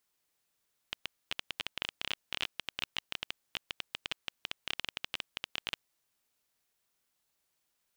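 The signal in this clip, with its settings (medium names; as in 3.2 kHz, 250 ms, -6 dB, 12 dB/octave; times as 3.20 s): random clicks 15 per s -16 dBFS 4.83 s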